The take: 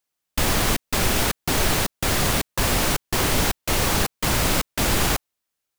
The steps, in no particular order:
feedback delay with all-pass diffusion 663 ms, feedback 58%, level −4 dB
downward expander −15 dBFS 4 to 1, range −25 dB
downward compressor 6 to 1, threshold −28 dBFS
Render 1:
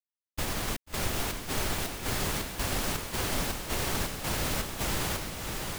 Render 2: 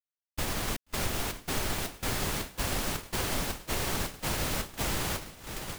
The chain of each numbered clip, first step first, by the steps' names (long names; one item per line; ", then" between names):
downward expander, then downward compressor, then feedback delay with all-pass diffusion
feedback delay with all-pass diffusion, then downward expander, then downward compressor